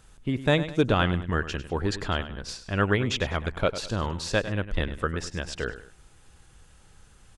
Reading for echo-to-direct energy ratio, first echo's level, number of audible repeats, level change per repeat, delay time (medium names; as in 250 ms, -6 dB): -12.5 dB, -13.0 dB, 2, -8.5 dB, 101 ms